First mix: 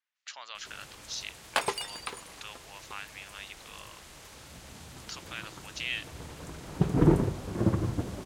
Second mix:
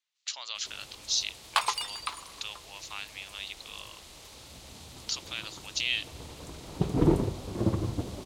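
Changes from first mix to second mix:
speech: add treble shelf 3.9 kHz +12 dB; first sound: add resonant high-pass 1.1 kHz, resonance Q 2.6; master: add fifteen-band graphic EQ 160 Hz -4 dB, 1.6 kHz -7 dB, 4 kHz +5 dB

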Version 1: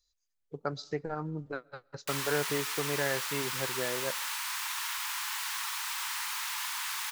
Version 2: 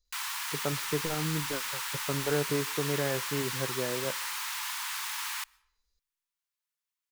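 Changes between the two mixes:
speech: add tilt shelf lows +6 dB, about 640 Hz; background: entry -1.95 s

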